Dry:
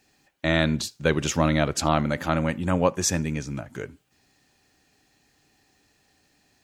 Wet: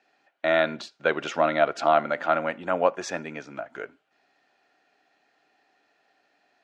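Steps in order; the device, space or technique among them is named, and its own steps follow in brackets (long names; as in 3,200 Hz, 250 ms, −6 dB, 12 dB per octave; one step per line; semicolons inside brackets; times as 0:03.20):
tin-can telephone (band-pass filter 420–2,900 Hz; hollow resonant body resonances 680/1,400 Hz, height 9 dB, ringing for 30 ms)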